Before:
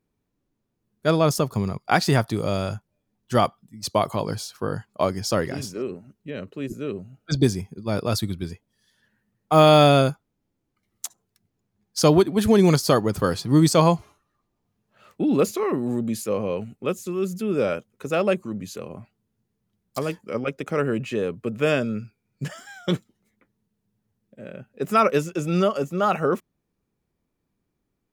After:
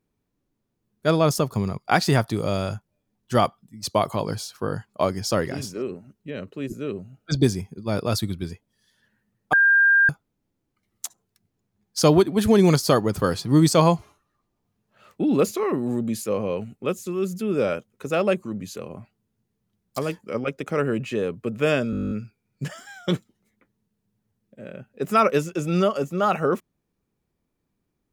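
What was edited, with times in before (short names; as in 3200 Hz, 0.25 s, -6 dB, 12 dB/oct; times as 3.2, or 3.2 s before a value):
9.53–10.09 bleep 1600 Hz -13 dBFS
21.91 stutter 0.02 s, 11 plays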